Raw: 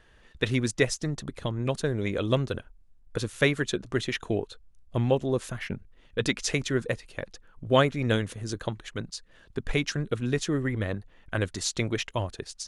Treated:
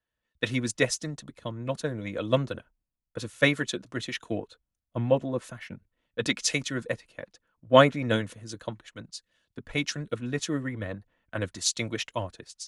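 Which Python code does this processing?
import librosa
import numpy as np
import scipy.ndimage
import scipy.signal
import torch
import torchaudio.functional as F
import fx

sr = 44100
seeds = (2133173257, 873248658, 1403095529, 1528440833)

y = fx.low_shelf(x, sr, hz=110.0, db=-11.0)
y = fx.notch_comb(y, sr, f0_hz=400.0)
y = fx.band_widen(y, sr, depth_pct=70)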